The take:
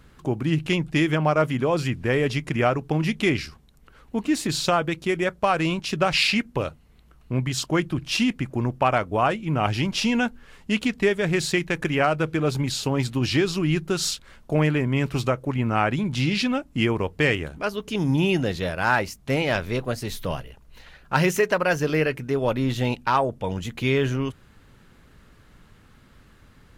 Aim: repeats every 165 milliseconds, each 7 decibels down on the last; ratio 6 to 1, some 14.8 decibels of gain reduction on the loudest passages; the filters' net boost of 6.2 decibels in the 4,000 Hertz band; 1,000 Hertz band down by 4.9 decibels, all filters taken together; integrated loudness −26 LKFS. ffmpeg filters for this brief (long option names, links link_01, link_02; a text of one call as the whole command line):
ffmpeg -i in.wav -af "equalizer=frequency=1000:width_type=o:gain=-7.5,equalizer=frequency=4000:width_type=o:gain=8.5,acompressor=threshold=-29dB:ratio=6,aecho=1:1:165|330|495|660|825:0.447|0.201|0.0905|0.0407|0.0183,volume=6dB" out.wav